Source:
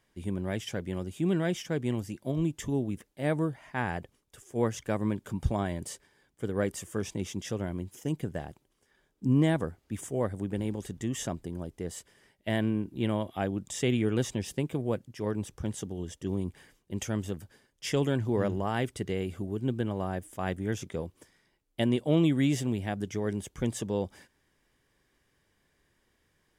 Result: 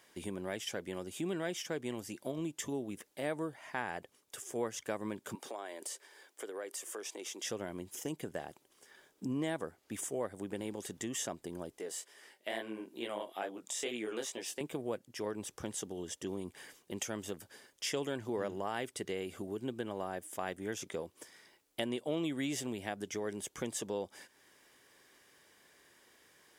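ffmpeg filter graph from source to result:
ffmpeg -i in.wav -filter_complex "[0:a]asettb=1/sr,asplit=3[link_01][link_02][link_03];[link_01]atrim=end=5.354[link_04];[link_02]atrim=start=5.35:end=7.43,asetpts=PTS-STARTPTS,afade=type=in:duration=0.004:curve=qsin,afade=type=out:start_time=2.076:duration=0.004:curve=qsin,highpass=frequency=330:width=0.5412,highpass=frequency=330:width=1.3066,acompressor=threshold=-47dB:ratio=2:attack=3.2:release=140:knee=1:detection=peak[link_05];[link_03]atrim=start=7.426[link_06];[link_04][link_05]acrossfade=duration=0.004:curve1=hsin:curve2=qsin[link_07];[link_07][link_06]acrossfade=duration=0.004:curve1=qsin:curve2=hsin,asettb=1/sr,asplit=3[link_08][link_09][link_10];[link_08]atrim=end=11.784[link_11];[link_09]atrim=start=11.78:end=14.61,asetpts=PTS-STARTPTS,afade=type=in:duration=0.004:curve=qsin,afade=type=out:start_time=2.826:duration=0.004:curve=qsin,highpass=320,flanger=delay=16.5:depth=6.3:speed=2.3[link_12];[link_10]atrim=start=14.606[link_13];[link_11][link_12]acrossfade=duration=0.004:curve1=hsin:curve2=qsin[link_14];[link_14][link_13]acrossfade=duration=0.004:curve1=qsin:curve2=hsin,highpass=frequency=190:poles=1,bass=frequency=250:gain=-9,treble=frequency=4000:gain=3,acompressor=threshold=-54dB:ratio=2,volume=9dB" out.wav

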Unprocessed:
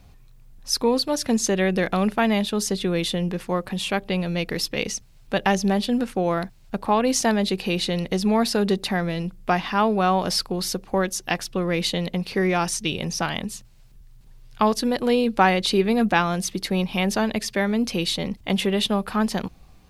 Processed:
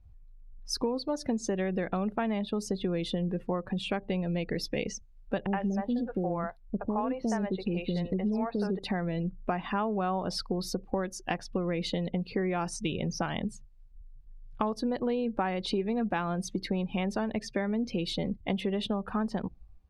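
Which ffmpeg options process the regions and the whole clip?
ffmpeg -i in.wav -filter_complex "[0:a]asettb=1/sr,asplit=3[link_01][link_02][link_03];[link_01]atrim=end=5.464[link_04];[link_02]atrim=start=5.46:end=8.79,asetpts=PTS-STARTPTS,afade=type=in:duration=0.004:curve=qsin,afade=type=out:start_time=3.326:duration=0.004:curve=qsin,highshelf=frequency=3100:gain=-5,acrossover=split=490|3800[link_05][link_06][link_07];[link_06]adelay=70[link_08];[link_07]adelay=140[link_09];[link_05][link_08][link_09]amix=inputs=3:normalize=0,atrim=end_sample=146853[link_10];[link_03]atrim=start=8.786[link_11];[link_04][link_10]acrossfade=duration=0.004:curve1=hsin:curve2=qsin[link_12];[link_12][link_11]acrossfade=duration=0.004:curve1=qsin:curve2=hsin,afftdn=noise_reduction=20:noise_floor=-35,highshelf=frequency=2400:gain=-10.5,acompressor=threshold=-27dB:ratio=6" out.wav

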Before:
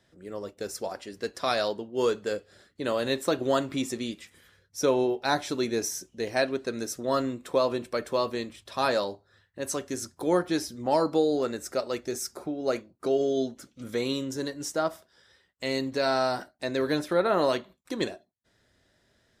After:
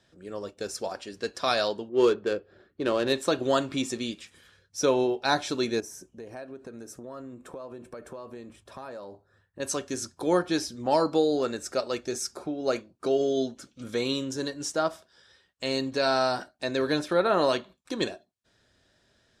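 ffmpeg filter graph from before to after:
ffmpeg -i in.wav -filter_complex "[0:a]asettb=1/sr,asplit=3[link_01][link_02][link_03];[link_01]atrim=end=1.894[link_04];[link_02]atrim=start=1.89:end=3.13,asetpts=PTS-STARTPTS,afade=type=in:duration=0.004:curve=qsin,afade=type=out:start_time=1.236:duration=0.004:curve=qsin,equalizer=frequency=360:width_type=o:width=0.34:gain=8.5,adynamicsmooth=sensitivity=5.5:basefreq=1900[link_05];[link_03]atrim=start=3.126[link_06];[link_04][link_05]acrossfade=duration=0.004:curve1=hsin:curve2=qsin[link_07];[link_07][link_06]acrossfade=duration=0.004:curve1=qsin:curve2=hsin,asettb=1/sr,asplit=3[link_08][link_09][link_10];[link_08]atrim=end=5.804[link_11];[link_09]atrim=start=5.8:end=9.6,asetpts=PTS-STARTPTS,afade=type=in:duration=0.004:curve=qsin,afade=type=out:start_time=3.796:duration=0.004:curve=qsin,equalizer=frequency=4000:width=0.67:gain=-14.5,acompressor=threshold=-39dB:ratio=5:attack=3.2:release=140:knee=1:detection=peak[link_12];[link_10]atrim=start=9.596[link_13];[link_11][link_12]acrossfade=duration=0.004:curve1=hsin:curve2=qsin[link_14];[link_14][link_13]acrossfade=duration=0.004:curve1=qsin:curve2=hsin,lowpass=9800,equalizer=frequency=3800:width=0.32:gain=3,bandreject=frequency=2000:width=10" out.wav

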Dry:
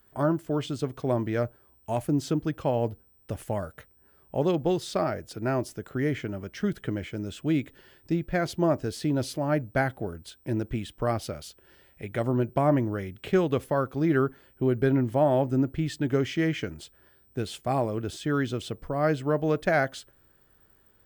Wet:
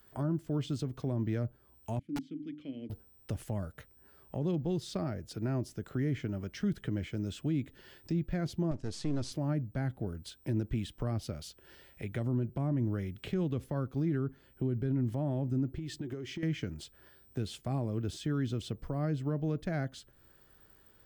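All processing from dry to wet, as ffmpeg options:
ffmpeg -i in.wav -filter_complex "[0:a]asettb=1/sr,asplit=3[link_01][link_02][link_03];[link_01]atrim=end=1.994[link_04];[link_02]atrim=start=1.99:end=2.9,asetpts=PTS-STARTPTS,afade=type=in:duration=0.004:curve=qsin,afade=type=out:start_time=0.906:duration=0.004:curve=qsin,asplit=3[link_05][link_06][link_07];[link_05]bandpass=frequency=270:width_type=q:width=8,volume=0dB[link_08];[link_06]bandpass=frequency=2290:width_type=q:width=8,volume=-6dB[link_09];[link_07]bandpass=frequency=3010:width_type=q:width=8,volume=-9dB[link_10];[link_08][link_09][link_10]amix=inputs=3:normalize=0,bandreject=frequency=50:width_type=h:width=6,bandreject=frequency=100:width_type=h:width=6,bandreject=frequency=150:width_type=h:width=6,bandreject=frequency=200:width_type=h:width=6,bandreject=frequency=250:width_type=h:width=6,bandreject=frequency=300:width_type=h:width=6,aeval=exprs='(mod(14.1*val(0)+1,2)-1)/14.1':channel_layout=same[link_11];[link_03]atrim=start=2.896[link_12];[link_04][link_11]acrossfade=duration=0.004:curve1=hsin:curve2=qsin[link_13];[link_13][link_12]acrossfade=duration=0.004:curve1=qsin:curve2=hsin,asettb=1/sr,asplit=3[link_14][link_15][link_16];[link_14]atrim=end=8.714[link_17];[link_15]atrim=start=8.71:end=9.32,asetpts=PTS-STARTPTS,afade=type=in:duration=0.004:curve=qsin,afade=type=out:start_time=0.606:duration=0.004:curve=qsin,aeval=exprs='if(lt(val(0),0),0.251*val(0),val(0))':channel_layout=same,lowpass=frequency=8200:width=0.5412,lowpass=frequency=8200:width=1.3066,highshelf=frequency=6300:gain=11[link_18];[link_16]atrim=start=9.316[link_19];[link_17][link_18]acrossfade=duration=0.004:curve1=hsin:curve2=qsin[link_20];[link_20][link_19]acrossfade=duration=0.004:curve1=qsin:curve2=hsin,asettb=1/sr,asplit=3[link_21][link_22][link_23];[link_21]atrim=end=15.724[link_24];[link_22]atrim=start=15.72:end=16.43,asetpts=PTS-STARTPTS,afade=type=in:duration=0.004:curve=qsin,afade=type=out:start_time=0.706:duration=0.004:curve=qsin,equalizer=frequency=360:width_type=o:width=0.27:gain=12,acompressor=threshold=-33dB:ratio=12:attack=3.2:release=140:knee=1:detection=peak[link_25];[link_23]atrim=start=16.426[link_26];[link_24][link_25]acrossfade=duration=0.004:curve1=hsin:curve2=qsin[link_27];[link_27][link_26]acrossfade=duration=0.004:curve1=qsin:curve2=hsin,equalizer=frequency=4800:width_type=o:width=1.6:gain=4,acrossover=split=280[link_28][link_29];[link_29]acompressor=threshold=-46dB:ratio=2.5[link_30];[link_28][link_30]amix=inputs=2:normalize=0,alimiter=limit=-23.5dB:level=0:latency=1:release=45" out.wav

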